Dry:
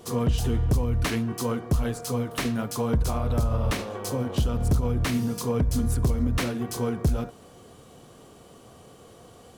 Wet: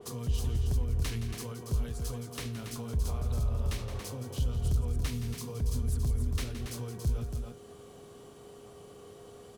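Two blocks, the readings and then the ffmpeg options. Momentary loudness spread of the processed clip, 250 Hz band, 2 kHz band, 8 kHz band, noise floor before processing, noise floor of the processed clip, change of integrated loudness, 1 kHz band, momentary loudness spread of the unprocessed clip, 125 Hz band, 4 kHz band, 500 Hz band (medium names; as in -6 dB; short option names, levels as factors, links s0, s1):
20 LU, -13.5 dB, -11.5 dB, -7.0 dB, -51 dBFS, -51 dBFS, -7.5 dB, -14.0 dB, 5 LU, -6.0 dB, -7.5 dB, -12.5 dB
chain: -filter_complex "[0:a]asplit=2[s0][s1];[s1]aecho=0:1:169.1|279.9:0.316|0.447[s2];[s0][s2]amix=inputs=2:normalize=0,acrossover=split=120|3000[s3][s4][s5];[s4]acompressor=threshold=0.00891:ratio=3[s6];[s3][s6][s5]amix=inputs=3:normalize=0,aeval=exprs='val(0)+0.00501*sin(2*PI*410*n/s)':c=same,adynamicequalizer=threshold=0.00316:dfrequency=3500:dqfactor=0.7:tfrequency=3500:tqfactor=0.7:attack=5:release=100:ratio=0.375:range=2.5:mode=cutabove:tftype=highshelf,volume=0.596"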